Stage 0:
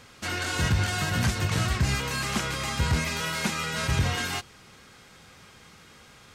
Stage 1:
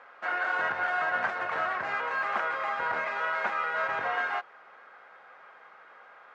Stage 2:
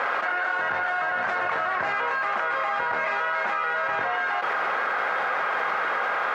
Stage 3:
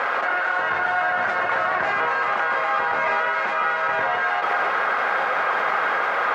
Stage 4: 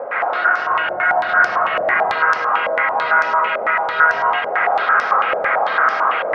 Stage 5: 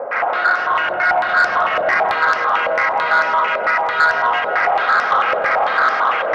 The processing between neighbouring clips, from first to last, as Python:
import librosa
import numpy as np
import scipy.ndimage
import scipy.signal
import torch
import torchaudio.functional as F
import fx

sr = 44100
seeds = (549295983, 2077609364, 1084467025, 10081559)

y1 = scipy.signal.sosfilt(scipy.signal.cheby1(2, 1.0, [620.0, 1600.0], 'bandpass', fs=sr, output='sos'), x)
y1 = y1 * librosa.db_to_amplitude(5.0)
y2 = fx.env_flatten(y1, sr, amount_pct=100)
y3 = fx.echo_alternate(y2, sr, ms=157, hz=1200.0, feedback_pct=69, wet_db=-4)
y3 = y3 * librosa.db_to_amplitude(2.5)
y4 = fx.rev_freeverb(y3, sr, rt60_s=1.1, hf_ratio=0.45, predelay_ms=85, drr_db=-3.5)
y4 = fx.filter_held_lowpass(y4, sr, hz=9.0, low_hz=580.0, high_hz=5400.0)
y4 = y4 * librosa.db_to_amplitude(-5.0)
y5 = fx.echo_heads(y4, sr, ms=161, heads='first and third', feedback_pct=49, wet_db=-16.5)
y5 = 10.0 ** (-8.0 / 20.0) * np.tanh(y5 / 10.0 ** (-8.0 / 20.0))
y5 = y5 * librosa.db_to_amplitude(1.5)